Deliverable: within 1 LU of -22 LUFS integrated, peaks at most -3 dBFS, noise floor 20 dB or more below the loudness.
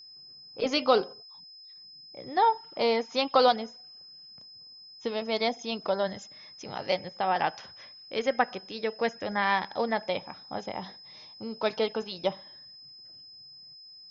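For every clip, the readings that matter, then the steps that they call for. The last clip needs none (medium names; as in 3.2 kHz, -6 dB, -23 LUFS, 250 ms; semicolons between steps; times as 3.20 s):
steady tone 5.1 kHz; tone level -47 dBFS; loudness -29.0 LUFS; peak level -8.5 dBFS; loudness target -22.0 LUFS
-> band-stop 5.1 kHz, Q 30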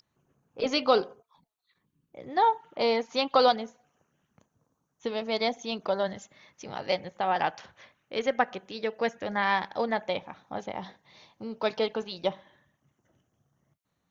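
steady tone not found; loudness -29.0 LUFS; peak level -8.5 dBFS; loudness target -22.0 LUFS
-> trim +7 dB; peak limiter -3 dBFS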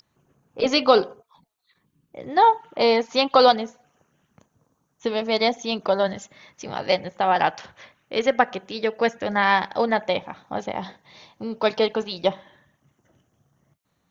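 loudness -22.0 LUFS; peak level -3.0 dBFS; noise floor -72 dBFS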